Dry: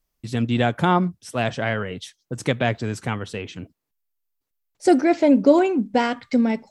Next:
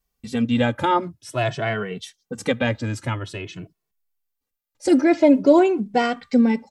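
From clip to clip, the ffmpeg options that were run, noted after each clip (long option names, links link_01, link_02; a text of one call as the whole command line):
ffmpeg -i in.wav -filter_complex "[0:a]asplit=2[link_01][link_02];[link_02]adelay=2.2,afreqshift=0.49[link_03];[link_01][link_03]amix=inputs=2:normalize=1,volume=3dB" out.wav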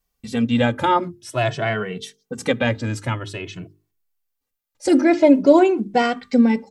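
ffmpeg -i in.wav -af "bandreject=frequency=50:width_type=h:width=6,bandreject=frequency=100:width_type=h:width=6,bandreject=frequency=150:width_type=h:width=6,bandreject=frequency=200:width_type=h:width=6,bandreject=frequency=250:width_type=h:width=6,bandreject=frequency=300:width_type=h:width=6,bandreject=frequency=350:width_type=h:width=6,bandreject=frequency=400:width_type=h:width=6,bandreject=frequency=450:width_type=h:width=6,volume=2dB" out.wav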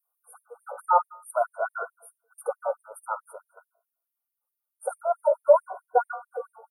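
ffmpeg -i in.wav -af "bandreject=frequency=56.45:width_type=h:width=4,bandreject=frequency=112.9:width_type=h:width=4,bandreject=frequency=169.35:width_type=h:width=4,bandreject=frequency=225.8:width_type=h:width=4,bandreject=frequency=282.25:width_type=h:width=4,bandreject=frequency=338.7:width_type=h:width=4,bandreject=frequency=395.15:width_type=h:width=4,bandreject=frequency=451.6:width_type=h:width=4,bandreject=frequency=508.05:width_type=h:width=4,bandreject=frequency=564.5:width_type=h:width=4,bandreject=frequency=620.95:width_type=h:width=4,bandreject=frequency=677.4:width_type=h:width=4,bandreject=frequency=733.85:width_type=h:width=4,bandreject=frequency=790.3:width_type=h:width=4,bandreject=frequency=846.75:width_type=h:width=4,bandreject=frequency=903.2:width_type=h:width=4,bandreject=frequency=959.65:width_type=h:width=4,bandreject=frequency=1016.1:width_type=h:width=4,bandreject=frequency=1072.55:width_type=h:width=4,bandreject=frequency=1129:width_type=h:width=4,bandreject=frequency=1185.45:width_type=h:width=4,bandreject=frequency=1241.9:width_type=h:width=4,bandreject=frequency=1298.35:width_type=h:width=4,bandreject=frequency=1354.8:width_type=h:width=4,bandreject=frequency=1411.25:width_type=h:width=4,bandreject=frequency=1467.7:width_type=h:width=4,bandreject=frequency=1524.15:width_type=h:width=4,bandreject=frequency=1580.6:width_type=h:width=4,bandreject=frequency=1637.05:width_type=h:width=4,bandreject=frequency=1693.5:width_type=h:width=4,afftfilt=real='re*(1-between(b*sr/4096,1500,8700))':imag='im*(1-between(b*sr/4096,1500,8700))':win_size=4096:overlap=0.75,afftfilt=real='re*gte(b*sr/1024,430*pow(2400/430,0.5+0.5*sin(2*PI*4.6*pts/sr)))':imag='im*gte(b*sr/1024,430*pow(2400/430,0.5+0.5*sin(2*PI*4.6*pts/sr)))':win_size=1024:overlap=0.75" out.wav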